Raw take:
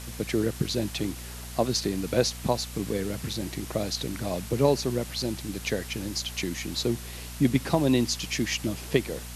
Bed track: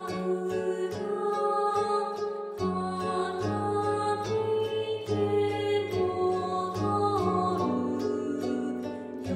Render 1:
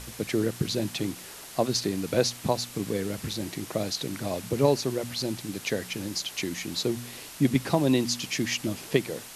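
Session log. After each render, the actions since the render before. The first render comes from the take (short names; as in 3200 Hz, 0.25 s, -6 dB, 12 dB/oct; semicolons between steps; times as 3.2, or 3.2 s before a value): de-hum 60 Hz, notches 4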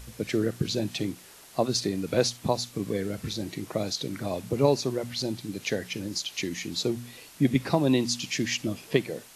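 noise print and reduce 7 dB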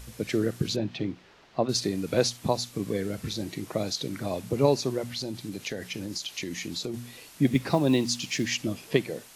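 0.76–1.69 air absorption 220 m; 5.11–6.94 compressor 4:1, threshold -29 dBFS; 7.46–8.49 block floating point 7-bit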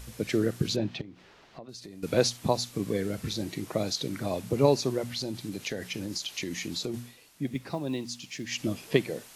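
1.01–2.03 compressor 4:1, threshold -44 dBFS; 6.97–8.65 dip -9.5 dB, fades 0.19 s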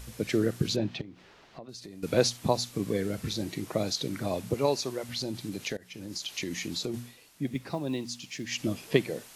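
4.54–5.09 low shelf 410 Hz -10 dB; 5.77–6.33 fade in, from -21.5 dB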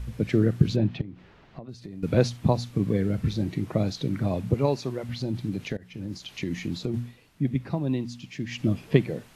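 tone controls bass +11 dB, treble -11 dB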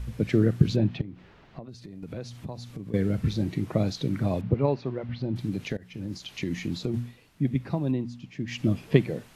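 1.66–2.94 compressor 3:1, threshold -38 dBFS; 4.41–5.36 air absorption 290 m; 7.91–8.48 high shelf 2100 Hz -11 dB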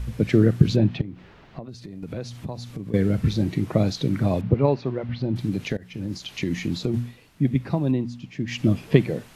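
gain +4.5 dB; limiter -2 dBFS, peak gain reduction 2.5 dB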